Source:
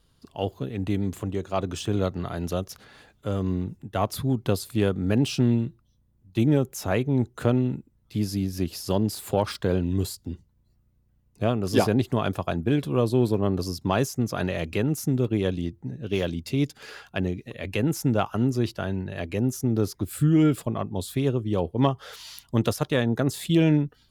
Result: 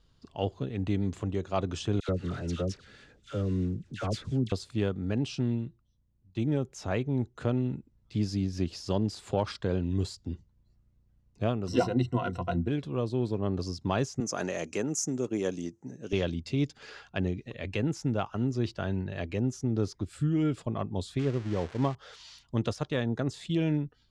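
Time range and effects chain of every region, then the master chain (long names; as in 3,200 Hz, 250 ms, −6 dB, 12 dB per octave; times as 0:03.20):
0:02.00–0:04.52: variable-slope delta modulation 64 kbit/s + flat-topped bell 860 Hz −9 dB 1 octave + all-pass dispersion lows, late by 86 ms, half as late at 1,200 Hz
0:11.67–0:12.68: noise gate −43 dBFS, range −12 dB + EQ curve with evenly spaced ripples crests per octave 2, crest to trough 17 dB
0:14.20–0:16.13: high-pass filter 240 Hz + high shelf with overshoot 5,000 Hz +9 dB, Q 3
0:21.19–0:21.95: spike at every zero crossing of −15 dBFS + drawn EQ curve 1,700 Hz 0 dB, 2,700 Hz −5 dB, 12,000 Hz −21 dB
whole clip: low-pass filter 7,200 Hz 24 dB per octave; low-shelf EQ 75 Hz +5 dB; speech leveller within 3 dB 0.5 s; level −6 dB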